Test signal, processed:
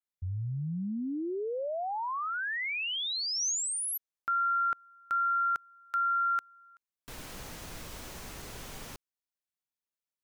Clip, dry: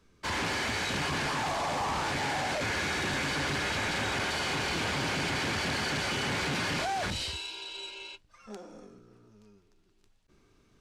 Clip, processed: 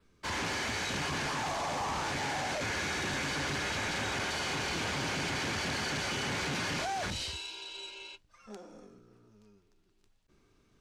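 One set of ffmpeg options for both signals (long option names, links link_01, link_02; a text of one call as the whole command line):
ffmpeg -i in.wav -af "adynamicequalizer=threshold=0.00224:dfrequency=6200:dqfactor=3.7:tfrequency=6200:tqfactor=3.7:attack=5:release=100:ratio=0.375:range=2:mode=boostabove:tftype=bell,volume=-3dB" out.wav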